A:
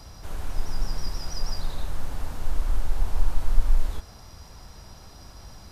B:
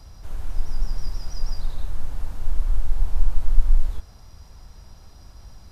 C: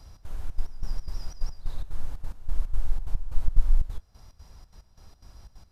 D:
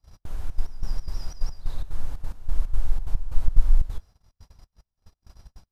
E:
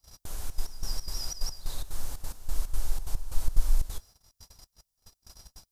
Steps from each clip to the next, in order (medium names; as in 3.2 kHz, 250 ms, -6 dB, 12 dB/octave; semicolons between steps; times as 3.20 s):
bass shelf 95 Hz +9.5 dB; trim -5.5 dB
trance gate "xx.xxx.x.." 181 bpm -12 dB; trim -4 dB
gate -45 dBFS, range -30 dB; trim +3 dB
tone controls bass -6 dB, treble +15 dB